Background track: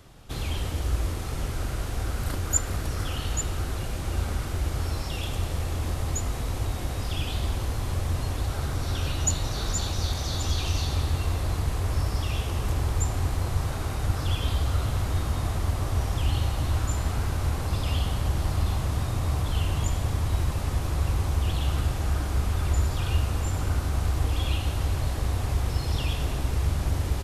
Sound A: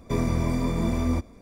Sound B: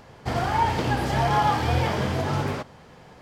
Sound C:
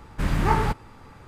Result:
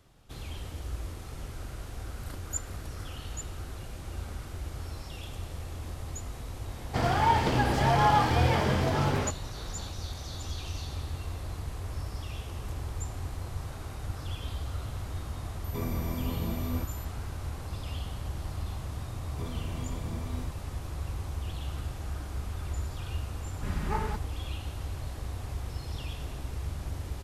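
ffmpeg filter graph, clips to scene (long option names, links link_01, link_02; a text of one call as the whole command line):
ffmpeg -i bed.wav -i cue0.wav -i cue1.wav -i cue2.wav -filter_complex "[1:a]asplit=2[link_01][link_02];[0:a]volume=-10dB[link_03];[link_01]aeval=exprs='val(0)+0.0126*sin(2*PI*13000*n/s)':channel_layout=same[link_04];[3:a]aecho=1:1:4.8:0.52[link_05];[2:a]atrim=end=3.21,asetpts=PTS-STARTPTS,volume=-1.5dB,afade=type=in:duration=0.004:curve=hsin,afade=type=out:start_time=3.206:duration=0.004:curve=hsin,adelay=6680[link_06];[link_04]atrim=end=1.41,asetpts=PTS-STARTPTS,volume=-9.5dB,afade=type=in:duration=0.004:curve=hsin,afade=type=out:start_time=1.406:duration=0.004:curve=hsin,adelay=15640[link_07];[link_02]atrim=end=1.41,asetpts=PTS-STARTPTS,volume=-15.5dB,afade=type=in:duration=0.004:curve=hsin,afade=type=out:start_time=1.406:duration=0.004:curve=hsin,adelay=19280[link_08];[link_05]atrim=end=1.27,asetpts=PTS-STARTPTS,volume=-12dB,afade=type=in:duration=0.004:curve=hsin,afade=type=out:start_time=1.266:duration=0.004:curve=hsin,adelay=23440[link_09];[link_03][link_06][link_07][link_08][link_09]amix=inputs=5:normalize=0" out.wav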